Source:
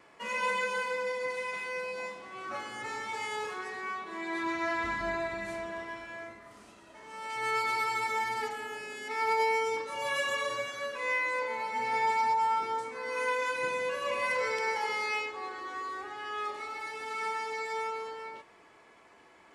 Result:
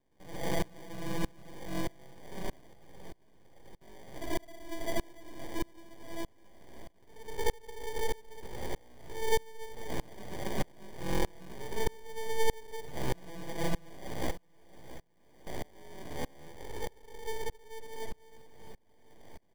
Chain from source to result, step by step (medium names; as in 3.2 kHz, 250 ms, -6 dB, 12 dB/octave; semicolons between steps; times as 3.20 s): 2.73–3.81 s: spectral selection erased 320–8100 Hz; 12.53–13.09 s: peaking EQ 1.2 kHz +11.5 dB 0.47 oct; in parallel at -1.5 dB: compression, threshold -44 dBFS, peak gain reduction 20 dB; on the sum: sample-and-hold 33×; full-wave rectifier; 14.31–15.47 s: valve stage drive 41 dB, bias 0.6; on a send: feedback delay 674 ms, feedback 46%, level -18 dB; on the sum: sawtooth tremolo in dB swelling 1.6 Hz, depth 29 dB; trim +6 dB